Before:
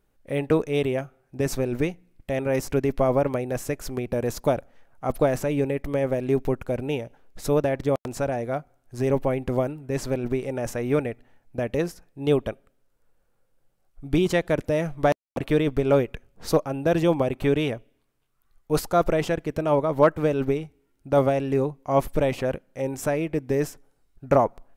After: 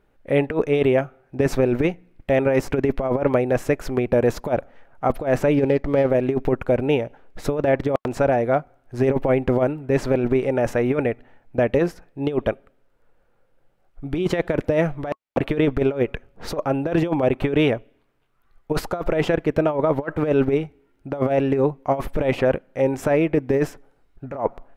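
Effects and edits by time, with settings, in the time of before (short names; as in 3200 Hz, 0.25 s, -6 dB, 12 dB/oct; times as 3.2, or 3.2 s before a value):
5.54–6.1 median filter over 15 samples
whole clip: tone controls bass -4 dB, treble -14 dB; notch 1100 Hz, Q 29; negative-ratio compressor -24 dBFS, ratio -0.5; gain +6.5 dB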